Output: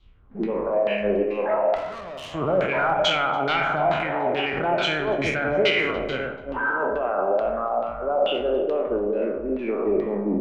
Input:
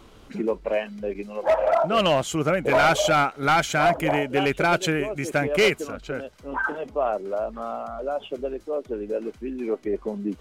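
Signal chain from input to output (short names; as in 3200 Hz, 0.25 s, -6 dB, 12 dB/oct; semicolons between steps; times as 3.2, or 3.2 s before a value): spectral trails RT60 1.08 s; in parallel at +1 dB: negative-ratio compressor -25 dBFS, ratio -0.5; on the sum: LFO low-pass saw down 2.3 Hz 550–3900 Hz; limiter -8.5 dBFS, peak gain reduction 7 dB; 1.75–2.33 tube stage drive 21 dB, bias 0.7; on a send: echo with dull and thin repeats by turns 0.145 s, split 1000 Hz, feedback 53%, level -13 dB; on the sum: spring tank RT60 1.3 s, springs 53/58 ms, chirp 60 ms, DRR 8 dB; three-band expander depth 100%; gain -7 dB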